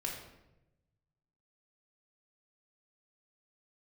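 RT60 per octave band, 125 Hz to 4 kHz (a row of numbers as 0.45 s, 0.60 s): 1.8 s, 1.2 s, 1.1 s, 0.85 s, 0.75 s, 0.60 s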